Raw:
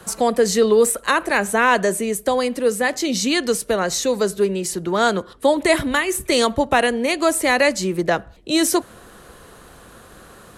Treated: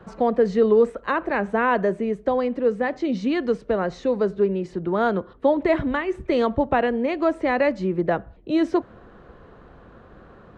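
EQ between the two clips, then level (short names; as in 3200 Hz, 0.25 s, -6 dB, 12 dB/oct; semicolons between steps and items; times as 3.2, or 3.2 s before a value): tape spacing loss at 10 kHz 45 dB; 0.0 dB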